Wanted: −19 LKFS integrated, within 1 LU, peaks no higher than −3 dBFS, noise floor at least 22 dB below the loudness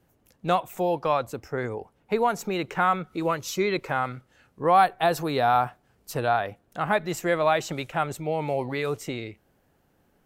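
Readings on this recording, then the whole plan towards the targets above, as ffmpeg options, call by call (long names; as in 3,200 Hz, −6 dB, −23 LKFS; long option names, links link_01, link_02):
integrated loudness −26.0 LKFS; sample peak −8.0 dBFS; target loudness −19.0 LKFS
→ -af "volume=7dB,alimiter=limit=-3dB:level=0:latency=1"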